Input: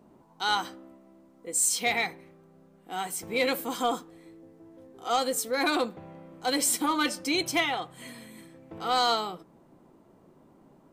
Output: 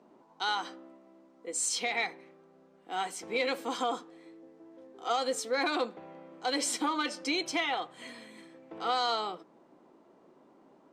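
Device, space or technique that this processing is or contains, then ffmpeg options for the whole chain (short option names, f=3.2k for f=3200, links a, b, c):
DJ mixer with the lows and highs turned down: -filter_complex "[0:a]acrossover=split=230 7400:gain=0.1 1 0.0708[a][b][c];[a][b][c]amix=inputs=3:normalize=0,alimiter=limit=-20.5dB:level=0:latency=1:release=175"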